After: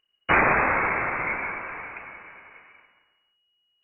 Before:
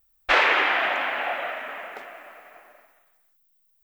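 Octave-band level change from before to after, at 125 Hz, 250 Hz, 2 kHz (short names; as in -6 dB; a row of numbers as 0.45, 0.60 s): n/a, +8.0 dB, -1.0 dB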